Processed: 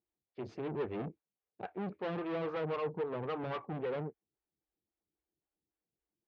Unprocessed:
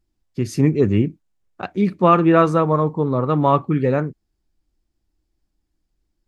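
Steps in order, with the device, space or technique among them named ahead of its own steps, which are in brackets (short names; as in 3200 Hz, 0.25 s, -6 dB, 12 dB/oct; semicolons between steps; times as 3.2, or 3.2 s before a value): vibe pedal into a guitar amplifier (photocell phaser 3.7 Hz; tube stage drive 28 dB, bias 0.6; speaker cabinet 100–3600 Hz, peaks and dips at 270 Hz -4 dB, 450 Hz +7 dB, 780 Hz +3 dB); gain -8 dB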